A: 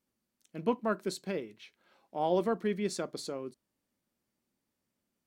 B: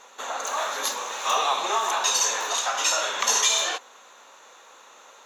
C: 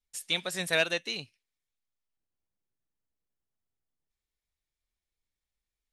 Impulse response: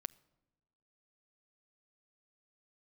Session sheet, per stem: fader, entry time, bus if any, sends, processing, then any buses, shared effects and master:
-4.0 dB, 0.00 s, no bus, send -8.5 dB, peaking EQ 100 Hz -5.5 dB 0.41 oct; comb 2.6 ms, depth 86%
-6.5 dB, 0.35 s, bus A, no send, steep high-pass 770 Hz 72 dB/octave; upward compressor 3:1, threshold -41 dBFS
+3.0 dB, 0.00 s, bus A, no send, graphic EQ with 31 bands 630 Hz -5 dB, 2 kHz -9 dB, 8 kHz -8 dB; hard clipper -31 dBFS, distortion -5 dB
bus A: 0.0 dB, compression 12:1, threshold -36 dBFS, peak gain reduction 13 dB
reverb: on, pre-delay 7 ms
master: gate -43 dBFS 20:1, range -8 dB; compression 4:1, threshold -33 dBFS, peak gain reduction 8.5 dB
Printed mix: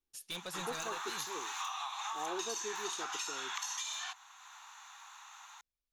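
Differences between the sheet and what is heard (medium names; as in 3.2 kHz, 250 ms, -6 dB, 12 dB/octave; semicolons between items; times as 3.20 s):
stem A -4.0 dB -> -16.0 dB; stem C +3.0 dB -> -5.5 dB; master: missing gate -43 dBFS 20:1, range -8 dB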